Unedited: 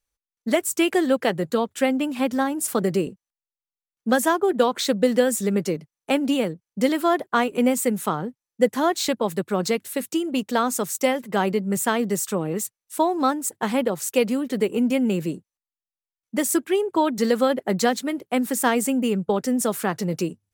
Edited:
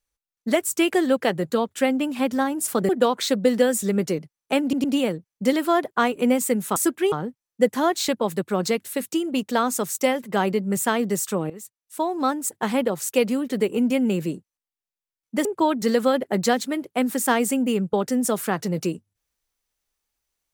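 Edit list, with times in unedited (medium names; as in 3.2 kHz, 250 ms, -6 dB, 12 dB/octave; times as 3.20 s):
2.89–4.47 s: delete
6.20 s: stutter 0.11 s, 3 plays
12.50–13.46 s: fade in, from -16 dB
16.45–16.81 s: move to 8.12 s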